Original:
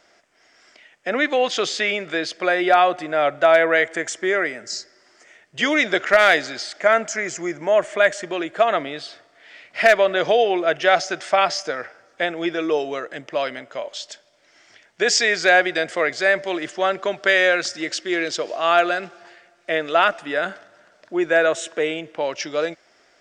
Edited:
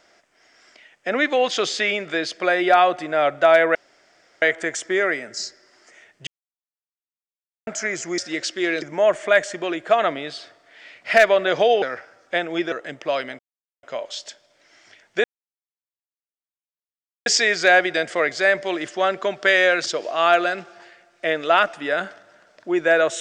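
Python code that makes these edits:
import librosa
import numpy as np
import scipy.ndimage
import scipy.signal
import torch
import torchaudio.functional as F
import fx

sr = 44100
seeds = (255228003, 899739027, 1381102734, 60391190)

y = fx.edit(x, sr, fx.insert_room_tone(at_s=3.75, length_s=0.67),
    fx.silence(start_s=5.6, length_s=1.4),
    fx.cut(start_s=10.51, length_s=1.18),
    fx.cut(start_s=12.59, length_s=0.4),
    fx.insert_silence(at_s=13.66, length_s=0.44),
    fx.insert_silence(at_s=15.07, length_s=2.02),
    fx.move(start_s=17.67, length_s=0.64, to_s=7.51), tone=tone)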